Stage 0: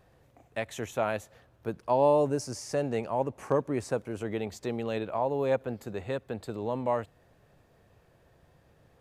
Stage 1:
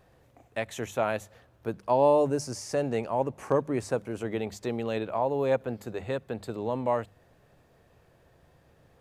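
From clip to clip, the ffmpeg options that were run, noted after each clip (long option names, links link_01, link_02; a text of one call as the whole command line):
ffmpeg -i in.wav -af "bandreject=frequency=50:width_type=h:width=6,bandreject=frequency=100:width_type=h:width=6,bandreject=frequency=150:width_type=h:width=6,bandreject=frequency=200:width_type=h:width=6,volume=1.5dB" out.wav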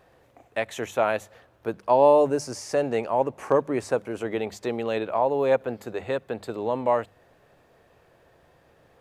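ffmpeg -i in.wav -af "bass=frequency=250:gain=-8,treble=frequency=4000:gain=-4,volume=5dB" out.wav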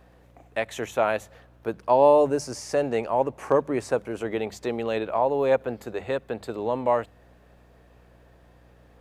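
ffmpeg -i in.wav -af "aeval=exprs='val(0)+0.00178*(sin(2*PI*60*n/s)+sin(2*PI*2*60*n/s)/2+sin(2*PI*3*60*n/s)/3+sin(2*PI*4*60*n/s)/4+sin(2*PI*5*60*n/s)/5)':channel_layout=same" out.wav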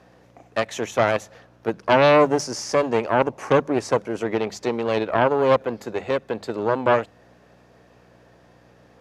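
ffmpeg -i in.wav -af "aexciter=amount=1.9:drive=3.8:freq=4900,aeval=exprs='0.501*(cos(1*acos(clip(val(0)/0.501,-1,1)))-cos(1*PI/2))+0.0631*(cos(5*acos(clip(val(0)/0.501,-1,1)))-cos(5*PI/2))+0.141*(cos(6*acos(clip(val(0)/0.501,-1,1)))-cos(6*PI/2))':channel_layout=same,highpass=120,lowpass=7100" out.wav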